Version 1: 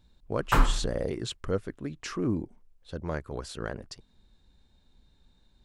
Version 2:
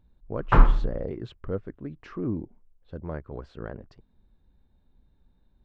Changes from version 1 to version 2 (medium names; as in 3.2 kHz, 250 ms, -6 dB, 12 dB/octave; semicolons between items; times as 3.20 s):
background +7.0 dB; master: add tape spacing loss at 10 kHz 41 dB